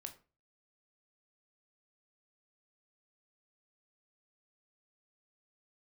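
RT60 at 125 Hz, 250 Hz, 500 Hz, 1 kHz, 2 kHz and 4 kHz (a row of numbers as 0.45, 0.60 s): 0.50, 0.40, 0.35, 0.35, 0.30, 0.25 s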